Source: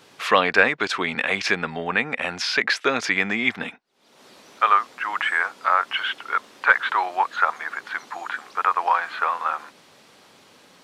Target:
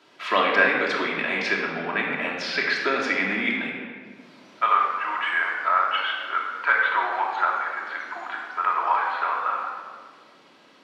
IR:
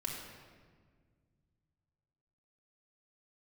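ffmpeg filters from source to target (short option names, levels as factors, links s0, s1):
-filter_complex "[0:a]acrossover=split=170 5100:gain=0.112 1 0.224[s0][s1][s2];[s0][s1][s2]amix=inputs=3:normalize=0[s3];[1:a]atrim=start_sample=2205[s4];[s3][s4]afir=irnorm=-1:irlink=0,volume=0.75"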